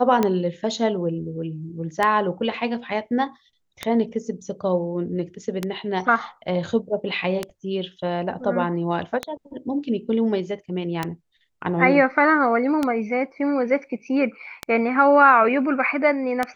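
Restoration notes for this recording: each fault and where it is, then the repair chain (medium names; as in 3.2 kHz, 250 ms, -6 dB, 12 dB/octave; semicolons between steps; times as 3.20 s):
tick 33 1/3 rpm -8 dBFS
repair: de-click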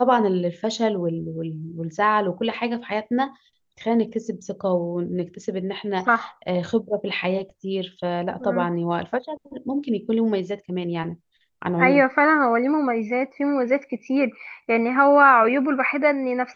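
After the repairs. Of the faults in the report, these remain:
nothing left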